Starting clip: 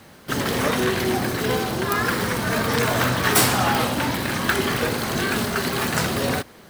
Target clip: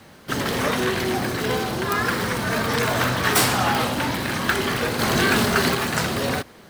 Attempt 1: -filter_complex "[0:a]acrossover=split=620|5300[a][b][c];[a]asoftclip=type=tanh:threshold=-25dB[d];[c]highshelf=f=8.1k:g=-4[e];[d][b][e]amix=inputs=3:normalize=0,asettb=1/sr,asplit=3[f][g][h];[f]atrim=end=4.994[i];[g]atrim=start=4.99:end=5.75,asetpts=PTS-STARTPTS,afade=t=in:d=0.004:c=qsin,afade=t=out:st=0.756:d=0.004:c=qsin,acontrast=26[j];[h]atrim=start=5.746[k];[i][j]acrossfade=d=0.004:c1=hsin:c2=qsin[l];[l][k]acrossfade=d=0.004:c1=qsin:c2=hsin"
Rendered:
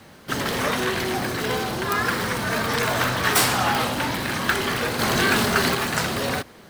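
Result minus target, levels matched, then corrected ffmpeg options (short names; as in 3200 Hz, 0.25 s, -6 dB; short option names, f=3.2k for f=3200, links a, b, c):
soft clip: distortion +7 dB
-filter_complex "[0:a]acrossover=split=620|5300[a][b][c];[a]asoftclip=type=tanh:threshold=-18.5dB[d];[c]highshelf=f=8.1k:g=-4[e];[d][b][e]amix=inputs=3:normalize=0,asettb=1/sr,asplit=3[f][g][h];[f]atrim=end=4.994[i];[g]atrim=start=4.99:end=5.75,asetpts=PTS-STARTPTS,afade=t=in:d=0.004:c=qsin,afade=t=out:st=0.756:d=0.004:c=qsin,acontrast=26[j];[h]atrim=start=5.746[k];[i][j]acrossfade=d=0.004:c1=hsin:c2=qsin[l];[l][k]acrossfade=d=0.004:c1=qsin:c2=hsin"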